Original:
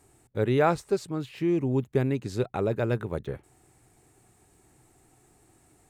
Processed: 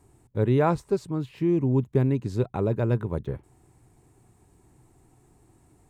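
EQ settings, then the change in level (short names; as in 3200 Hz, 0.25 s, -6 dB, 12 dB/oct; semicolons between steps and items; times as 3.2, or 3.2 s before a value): low shelf 420 Hz +11 dB; bell 990 Hz +8 dB 0.28 oct; -5.0 dB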